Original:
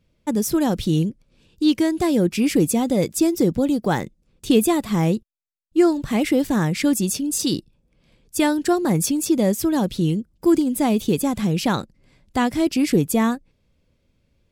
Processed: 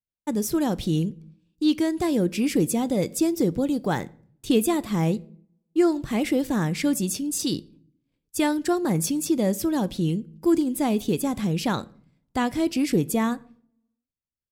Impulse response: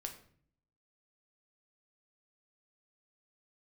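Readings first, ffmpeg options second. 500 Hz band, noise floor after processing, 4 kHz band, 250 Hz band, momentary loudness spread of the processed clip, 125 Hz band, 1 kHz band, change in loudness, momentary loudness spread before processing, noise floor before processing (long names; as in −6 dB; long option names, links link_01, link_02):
−4.0 dB, below −85 dBFS, −4.0 dB, −4.0 dB, 6 LU, −4.0 dB, −4.0 dB, −4.0 dB, 6 LU, −67 dBFS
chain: -filter_complex "[0:a]agate=range=-33dB:threshold=-45dB:ratio=3:detection=peak,asplit=2[link_01][link_02];[1:a]atrim=start_sample=2205[link_03];[link_02][link_03]afir=irnorm=-1:irlink=0,volume=-8.5dB[link_04];[link_01][link_04]amix=inputs=2:normalize=0,volume=-6dB"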